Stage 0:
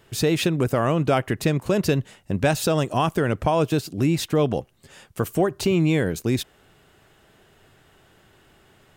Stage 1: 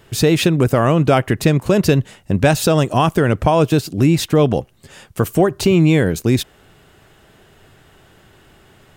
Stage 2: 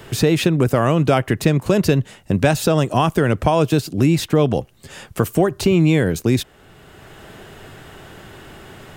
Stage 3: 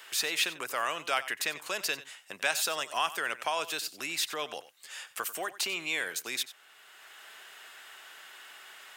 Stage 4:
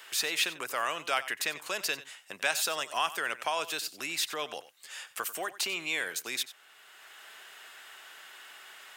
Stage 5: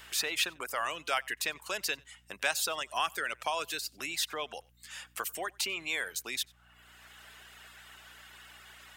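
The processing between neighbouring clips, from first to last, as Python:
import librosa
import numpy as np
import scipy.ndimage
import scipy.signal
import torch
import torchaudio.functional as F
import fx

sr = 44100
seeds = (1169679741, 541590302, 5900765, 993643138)

y1 = fx.low_shelf(x, sr, hz=190.0, db=3.0)
y1 = F.gain(torch.from_numpy(y1), 6.0).numpy()
y2 = fx.band_squash(y1, sr, depth_pct=40)
y2 = F.gain(torch.from_numpy(y2), -2.0).numpy()
y3 = scipy.signal.sosfilt(scipy.signal.butter(2, 1400.0, 'highpass', fs=sr, output='sos'), y2)
y3 = y3 + 10.0 ** (-16.0 / 20.0) * np.pad(y3, (int(92 * sr / 1000.0), 0))[:len(y3)]
y3 = F.gain(torch.from_numpy(y3), -3.5).numpy()
y4 = y3
y5 = fx.add_hum(y4, sr, base_hz=60, snr_db=26)
y5 = fx.dereverb_blind(y5, sr, rt60_s=0.77)
y5 = F.gain(torch.from_numpy(y5), -1.0).numpy()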